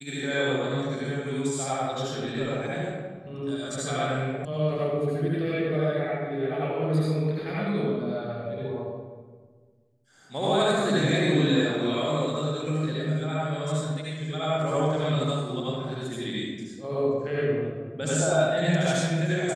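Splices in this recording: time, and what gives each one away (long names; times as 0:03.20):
0:04.45: cut off before it has died away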